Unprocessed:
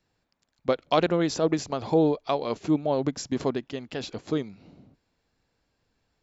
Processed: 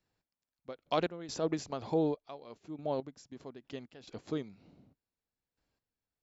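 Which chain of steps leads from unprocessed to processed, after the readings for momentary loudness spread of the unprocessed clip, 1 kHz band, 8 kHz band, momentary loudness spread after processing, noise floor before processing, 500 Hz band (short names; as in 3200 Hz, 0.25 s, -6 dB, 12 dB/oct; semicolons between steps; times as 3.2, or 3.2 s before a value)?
11 LU, -10.0 dB, n/a, 18 LU, -77 dBFS, -10.0 dB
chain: step gate "x...x.xxxx..." 70 bpm -12 dB; gain -8.5 dB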